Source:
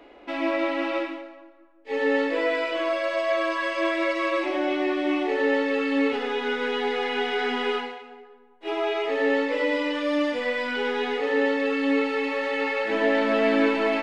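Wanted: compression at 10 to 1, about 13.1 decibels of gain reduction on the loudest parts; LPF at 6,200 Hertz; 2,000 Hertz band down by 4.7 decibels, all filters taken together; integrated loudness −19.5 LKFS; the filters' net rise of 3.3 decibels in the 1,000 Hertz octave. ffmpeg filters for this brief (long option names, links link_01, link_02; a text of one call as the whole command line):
ffmpeg -i in.wav -af "lowpass=6200,equalizer=frequency=1000:width_type=o:gain=6,equalizer=frequency=2000:width_type=o:gain=-7.5,acompressor=threshold=-31dB:ratio=10,volume=15.5dB" out.wav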